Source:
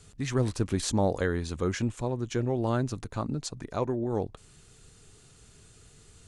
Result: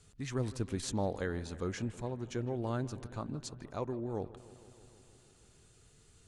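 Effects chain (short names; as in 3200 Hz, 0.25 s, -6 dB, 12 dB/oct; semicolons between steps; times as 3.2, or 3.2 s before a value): analogue delay 0.158 s, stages 4096, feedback 74%, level -18 dB; gain -8 dB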